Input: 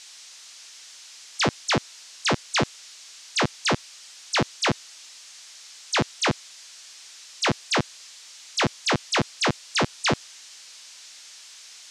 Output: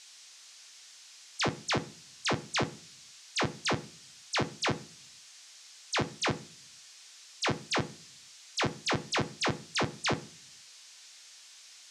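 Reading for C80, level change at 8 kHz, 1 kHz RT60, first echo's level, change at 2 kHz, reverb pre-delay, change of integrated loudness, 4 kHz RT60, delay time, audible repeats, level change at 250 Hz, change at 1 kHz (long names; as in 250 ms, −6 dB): 24.0 dB, −7.5 dB, 0.40 s, no echo audible, −7.0 dB, 3 ms, −7.0 dB, 0.55 s, no echo audible, no echo audible, −7.0 dB, −7.0 dB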